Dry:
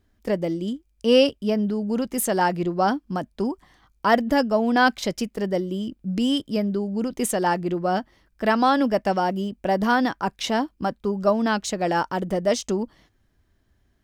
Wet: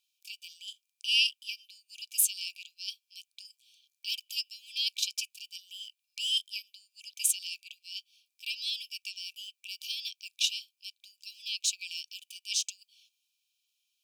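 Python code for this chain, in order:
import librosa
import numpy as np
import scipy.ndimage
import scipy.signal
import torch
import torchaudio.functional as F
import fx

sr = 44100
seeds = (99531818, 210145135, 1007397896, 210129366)

y = fx.brickwall_highpass(x, sr, low_hz=2300.0)
y = y * librosa.db_to_amplitude(2.0)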